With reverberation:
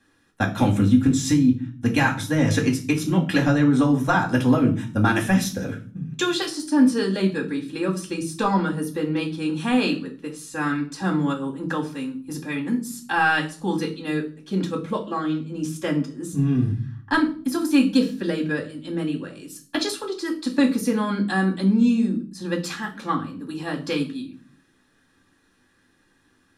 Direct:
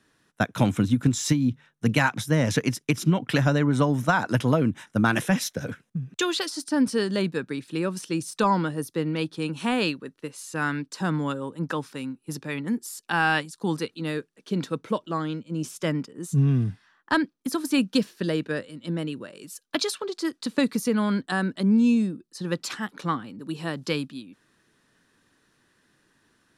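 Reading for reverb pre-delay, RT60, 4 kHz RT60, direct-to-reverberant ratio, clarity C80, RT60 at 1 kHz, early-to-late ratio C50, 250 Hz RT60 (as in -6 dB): 4 ms, 0.45 s, 0.35 s, -2.0 dB, 18.0 dB, 0.40 s, 12.5 dB, 0.75 s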